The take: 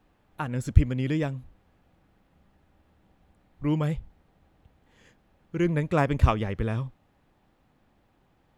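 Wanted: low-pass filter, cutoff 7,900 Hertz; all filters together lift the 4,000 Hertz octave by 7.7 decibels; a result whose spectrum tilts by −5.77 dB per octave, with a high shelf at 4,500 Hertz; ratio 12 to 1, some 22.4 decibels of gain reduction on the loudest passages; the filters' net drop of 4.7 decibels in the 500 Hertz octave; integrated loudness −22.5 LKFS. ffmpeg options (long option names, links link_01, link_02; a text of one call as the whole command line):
ffmpeg -i in.wav -af "lowpass=7900,equalizer=frequency=500:width_type=o:gain=-6.5,equalizer=frequency=4000:width_type=o:gain=8.5,highshelf=frequency=4500:gain=5.5,acompressor=threshold=-33dB:ratio=12,volume=17.5dB" out.wav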